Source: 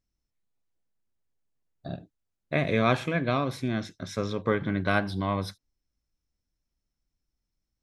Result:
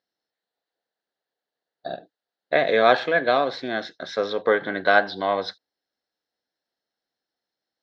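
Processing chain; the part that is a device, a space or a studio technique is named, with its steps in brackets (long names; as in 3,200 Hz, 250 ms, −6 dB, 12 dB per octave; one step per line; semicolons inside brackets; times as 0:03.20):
phone earpiece (loudspeaker in its box 450–4,500 Hz, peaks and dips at 480 Hz +5 dB, 730 Hz +6 dB, 1,100 Hz −5 dB, 1,700 Hz +6 dB, 2,400 Hz −9 dB, 4,200 Hz +6 dB)
level +7 dB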